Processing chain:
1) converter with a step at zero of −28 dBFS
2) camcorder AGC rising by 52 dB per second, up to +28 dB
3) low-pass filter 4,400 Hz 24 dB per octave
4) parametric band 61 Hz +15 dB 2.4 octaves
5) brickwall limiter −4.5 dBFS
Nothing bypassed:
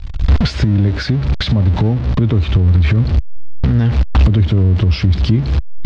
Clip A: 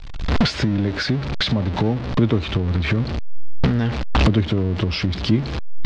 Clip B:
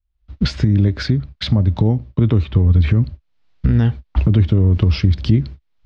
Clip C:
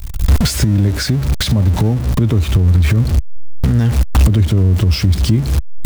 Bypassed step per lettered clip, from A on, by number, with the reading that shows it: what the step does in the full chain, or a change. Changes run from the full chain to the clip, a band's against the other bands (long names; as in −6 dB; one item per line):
4, 125 Hz band −9.5 dB
1, distortion level −11 dB
3, 4 kHz band +2.5 dB